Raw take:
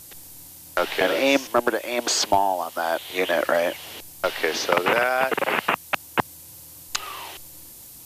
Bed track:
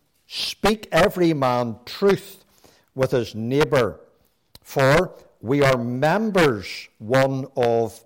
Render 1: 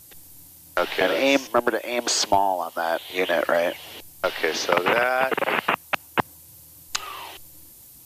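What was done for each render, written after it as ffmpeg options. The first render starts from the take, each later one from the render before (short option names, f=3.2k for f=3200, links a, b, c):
-af "afftdn=nr=6:nf=-44"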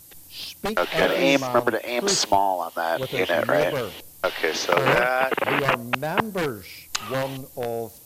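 -filter_complex "[1:a]volume=-9dB[a];[0:a][a]amix=inputs=2:normalize=0"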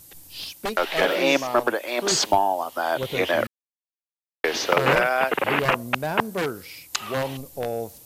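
-filter_complex "[0:a]asettb=1/sr,asplit=3[a][b][c];[a]atrim=end=0.524[d];[b]atrim=start=0.52:end=2.12,asetpts=PTS-STARTPTS,afade=t=in:d=0.004:c=qsin,afade=t=out:st=1.596:d=0.004:c=qsin,equalizer=f=87:t=o:w=2.1:g=-11.5[e];[c]atrim=start=2.116[f];[d][e]acrossfade=d=0.004:c1=hsin:c2=qsin[g];[g][f]acrossfade=d=0.004:c1=qsin:c2=hsin,asettb=1/sr,asplit=3[h][i][j];[h]atrim=end=6.184[k];[i]atrim=start=6.18:end=7.17,asetpts=PTS-STARTPTS,afade=t=in:d=0.004:c=qsin,afade=t=out:st=0.986:d=0.004:c=qsin,highpass=f=140:p=1[l];[j]atrim=start=7.166[m];[k][l]acrossfade=d=0.004:c1=hsin:c2=qsin[n];[n][m]acrossfade=d=0.004:c1=qsin:c2=hsin,asplit=3[o][p][q];[o]atrim=end=3.47,asetpts=PTS-STARTPTS,afade=t=out:st=3.466:d=0.004:c=hsin[r];[p]atrim=start=3.47:end=4.44,asetpts=PTS-STARTPTS,volume=0[s];[q]atrim=start=4.44,asetpts=PTS-STARTPTS,afade=t=in:d=0.004:c=hsin[t];[r][s][t]concat=n=3:v=0:a=1"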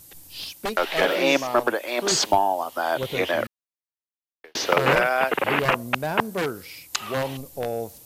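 -filter_complex "[0:a]asplit=2[a][b];[a]atrim=end=4.55,asetpts=PTS-STARTPTS,afade=t=out:st=3.07:d=1.48[c];[b]atrim=start=4.55,asetpts=PTS-STARTPTS,afade=t=in:d=0.004:c=hsin[d];[c][d]concat=n=2:v=0:a=1"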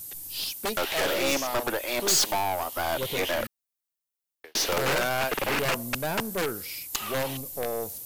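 -af "aeval=exprs='(tanh(14.1*val(0)+0.35)-tanh(0.35))/14.1':c=same,crystalizer=i=1.5:c=0"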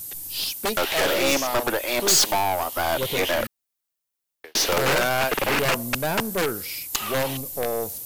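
-af "volume=4.5dB"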